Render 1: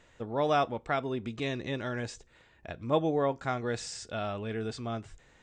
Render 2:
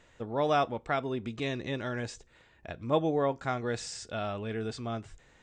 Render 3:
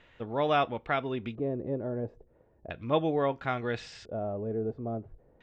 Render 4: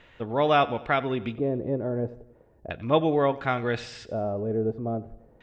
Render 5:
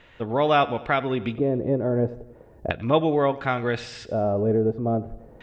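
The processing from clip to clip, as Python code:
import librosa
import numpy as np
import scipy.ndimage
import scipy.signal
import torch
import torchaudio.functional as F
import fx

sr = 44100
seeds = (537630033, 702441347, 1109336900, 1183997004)

y1 = x
y2 = fx.filter_lfo_lowpass(y1, sr, shape='square', hz=0.37, low_hz=550.0, high_hz=3000.0, q=1.6)
y3 = fx.echo_feedback(y2, sr, ms=91, feedback_pct=51, wet_db=-19.0)
y3 = y3 * 10.0 ** (5.0 / 20.0)
y4 = fx.recorder_agc(y3, sr, target_db=-15.5, rise_db_per_s=7.8, max_gain_db=30)
y4 = y4 * 10.0 ** (1.5 / 20.0)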